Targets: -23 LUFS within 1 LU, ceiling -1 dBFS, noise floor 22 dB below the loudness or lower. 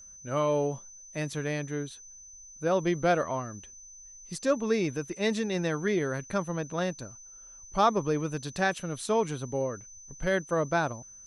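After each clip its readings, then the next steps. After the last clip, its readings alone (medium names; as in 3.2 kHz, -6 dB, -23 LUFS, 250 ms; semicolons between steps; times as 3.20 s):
steady tone 6.1 kHz; tone level -47 dBFS; loudness -30.0 LUFS; peak level -11.5 dBFS; loudness target -23.0 LUFS
-> band-stop 6.1 kHz, Q 30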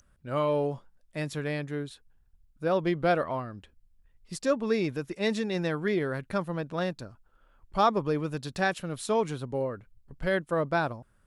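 steady tone not found; loudness -30.0 LUFS; peak level -12.0 dBFS; loudness target -23.0 LUFS
-> trim +7 dB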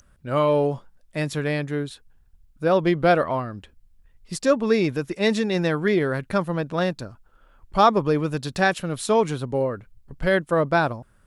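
loudness -23.0 LUFS; peak level -5.0 dBFS; noise floor -58 dBFS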